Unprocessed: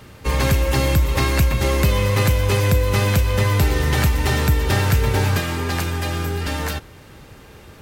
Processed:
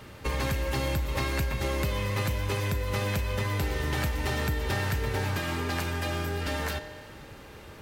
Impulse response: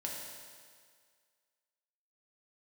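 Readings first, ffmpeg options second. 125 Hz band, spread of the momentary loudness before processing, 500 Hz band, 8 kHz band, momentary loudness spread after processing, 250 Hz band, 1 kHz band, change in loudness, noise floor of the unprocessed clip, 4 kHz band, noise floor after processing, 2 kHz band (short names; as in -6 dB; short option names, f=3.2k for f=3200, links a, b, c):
-12.0 dB, 6 LU, -9.5 dB, -11.0 dB, 7 LU, -10.0 dB, -8.5 dB, -10.5 dB, -44 dBFS, -9.0 dB, -47 dBFS, -8.0 dB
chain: -filter_complex "[0:a]acompressor=threshold=-25dB:ratio=2.5,asplit=2[a][b];[b]highpass=240,lowpass=5.5k[c];[1:a]atrim=start_sample=2205[d];[c][d]afir=irnorm=-1:irlink=0,volume=-7dB[e];[a][e]amix=inputs=2:normalize=0,volume=-4.5dB"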